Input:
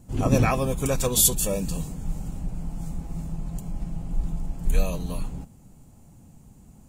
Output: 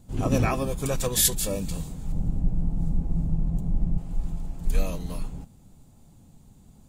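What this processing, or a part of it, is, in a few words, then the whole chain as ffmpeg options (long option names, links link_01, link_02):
octave pedal: -filter_complex "[0:a]asettb=1/sr,asplit=3[link_01][link_02][link_03];[link_01]atrim=end=2.124[link_04];[link_02]atrim=start=2.12:end=3.98,asetpts=PTS-STARTPTS,afade=type=in:duration=0.004:curve=qsin,afade=type=out:start_time=1.856:duration=0.004:curve=qsin,tiltshelf=frequency=880:gain=9[link_05];[link_03]atrim=start=3.976[link_06];[link_04][link_05]acrossfade=duration=0.004:curve1=hsin:curve2=qsin[link_07];[link_07][link_06]acrossfade=duration=0.004:curve1=qsin:curve2=hsin,asplit=2[link_08][link_09];[link_09]asetrate=22050,aresample=44100,atempo=2,volume=-8dB[link_10];[link_08][link_10]amix=inputs=2:normalize=0,volume=-3dB"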